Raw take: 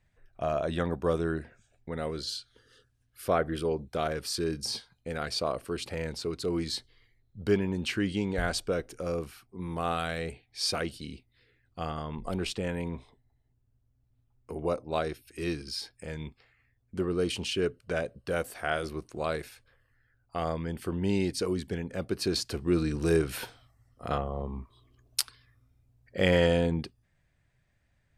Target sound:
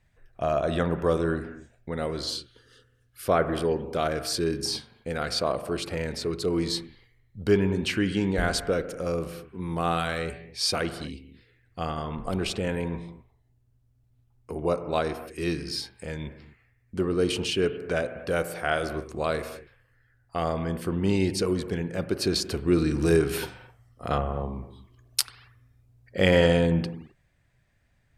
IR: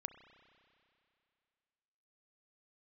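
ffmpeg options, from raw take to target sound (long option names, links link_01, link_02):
-filter_complex "[1:a]atrim=start_sample=2205,afade=type=out:start_time=0.25:duration=0.01,atrim=end_sample=11466,asetrate=33075,aresample=44100[link_01];[0:a][link_01]afir=irnorm=-1:irlink=0,volume=6.5dB"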